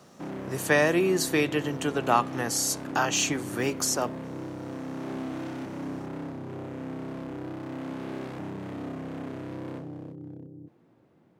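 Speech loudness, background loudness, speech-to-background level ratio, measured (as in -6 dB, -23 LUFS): -26.0 LUFS, -37.0 LUFS, 11.0 dB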